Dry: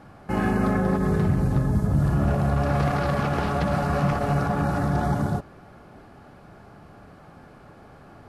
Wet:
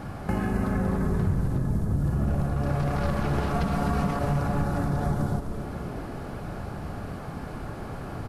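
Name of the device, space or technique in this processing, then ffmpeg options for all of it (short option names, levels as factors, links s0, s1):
ASMR close-microphone chain: -filter_complex "[0:a]asettb=1/sr,asplit=3[s0][s1][s2];[s0]atrim=end=3.544[s3];[s1]atrim=start=3.54:end=4.19,asetpts=PTS-STARTPTS,afade=t=in:d=0.004:c=qsin,afade=t=out:st=0.646:d=0.004:c=qsin,aecho=1:1:4.4:0.93,atrim=end_sample=28665[s4];[s2]atrim=start=4.186[s5];[s3][s4]acrossfade=d=0.004:c1=hsin:c2=qsin[s6];[s6][s5]acrossfade=d=0.004:c1=qsin:c2=hsin,lowshelf=f=170:g=7.5,acompressor=threshold=0.0178:ratio=4,highshelf=f=7800:g=7,asplit=8[s7][s8][s9][s10][s11][s12][s13][s14];[s8]adelay=254,afreqshift=-140,volume=0.473[s15];[s9]adelay=508,afreqshift=-280,volume=0.26[s16];[s10]adelay=762,afreqshift=-420,volume=0.143[s17];[s11]adelay=1016,afreqshift=-560,volume=0.0785[s18];[s12]adelay=1270,afreqshift=-700,volume=0.0432[s19];[s13]adelay=1524,afreqshift=-840,volume=0.0237[s20];[s14]adelay=1778,afreqshift=-980,volume=0.013[s21];[s7][s15][s16][s17][s18][s19][s20][s21]amix=inputs=8:normalize=0,volume=2.51"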